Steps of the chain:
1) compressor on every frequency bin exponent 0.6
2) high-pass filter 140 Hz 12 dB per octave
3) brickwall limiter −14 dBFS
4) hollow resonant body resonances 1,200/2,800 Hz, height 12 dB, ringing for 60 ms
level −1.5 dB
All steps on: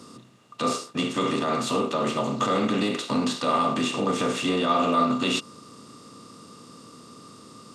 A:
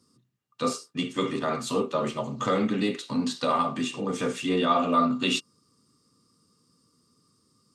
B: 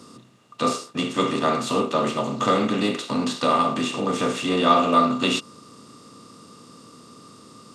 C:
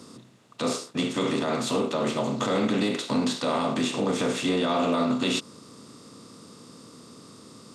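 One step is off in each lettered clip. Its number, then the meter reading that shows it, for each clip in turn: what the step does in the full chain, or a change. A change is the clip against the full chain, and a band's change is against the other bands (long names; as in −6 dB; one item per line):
1, change in crest factor +2.5 dB
3, change in crest factor +3.5 dB
4, 1 kHz band −5.5 dB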